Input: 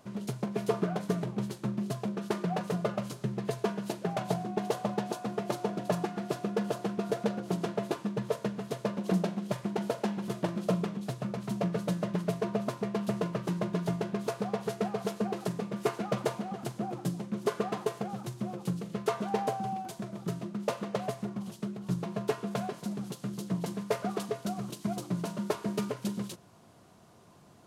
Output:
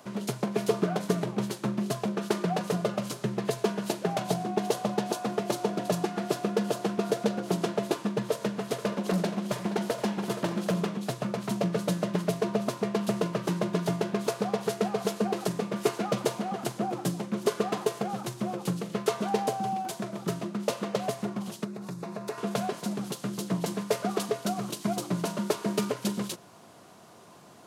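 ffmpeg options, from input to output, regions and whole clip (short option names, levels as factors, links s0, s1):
-filter_complex "[0:a]asettb=1/sr,asplit=3[s0][s1][s2];[s0]atrim=end=8.314[s3];[s1]atrim=start=8.31:end=10.85,asetpts=PTS-STARTPTS,afade=t=in:d=0.004:c=qsin,afade=t=out:st=2.536:d=0.004:c=qsin,volume=18.8,asoftclip=hard,volume=0.0531,aecho=1:1:473:0.188,atrim=end_sample=112014,acompressor=mode=upward:threshold=0.0112:ratio=2.5:attack=3.2:release=140:knee=2.83:detection=peak[s4];[s2]atrim=start=10.846[s5];[s3][s4]acrossfade=d=0.004:c1=hsin:c2=qsin[s6];[s6][s5]acrossfade=d=0.004:c1=qsin:c2=hsin,asettb=1/sr,asplit=3[s7][s8][s9];[s7]atrim=end=21.644[s10];[s8]atrim=start=21.64:end=22.38,asetpts=PTS-STARTPTS,afade=t=in:d=0.004:c=qsin,afade=t=out:st=0.736:d=0.004:c=qsin,equalizer=f=3100:t=o:w=0.21:g=-13,acompressor=threshold=0.0112:ratio=3:attack=3.2:release=140:knee=1:detection=peak[s11];[s9]atrim=start=22.376[s12];[s10][s11]acrossfade=d=0.004:c1=hsin:c2=qsin[s13];[s13][s12]acrossfade=d=0.004:c1=qsin:c2=hsin,highpass=f=300:p=1,acrossover=split=430|3000[s14][s15][s16];[s15]acompressor=threshold=0.0126:ratio=6[s17];[s14][s17][s16]amix=inputs=3:normalize=0,volume=2.51"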